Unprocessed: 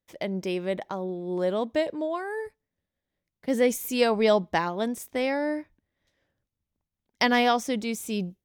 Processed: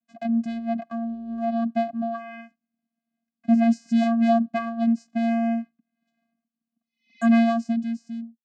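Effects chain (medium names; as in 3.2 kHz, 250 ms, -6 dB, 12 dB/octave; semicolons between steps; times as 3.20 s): fade out at the end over 1.12 s; vocoder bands 8, square 230 Hz; spectral replace 6.79–7.25 s, 1.8–6.3 kHz both; trim +4.5 dB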